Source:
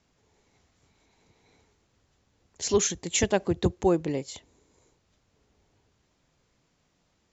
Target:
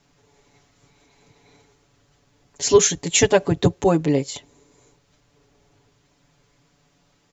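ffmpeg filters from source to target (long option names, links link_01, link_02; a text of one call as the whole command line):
ffmpeg -i in.wav -af "aecho=1:1:7:0.86,volume=6dB" out.wav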